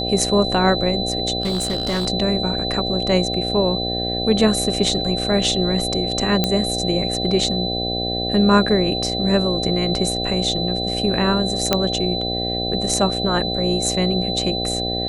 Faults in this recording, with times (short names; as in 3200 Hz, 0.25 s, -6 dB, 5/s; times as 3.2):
buzz 60 Hz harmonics 13 -26 dBFS
tone 4000 Hz -24 dBFS
1.42–2.08 clipped -17.5 dBFS
6.44 pop -3 dBFS
11.73 pop -1 dBFS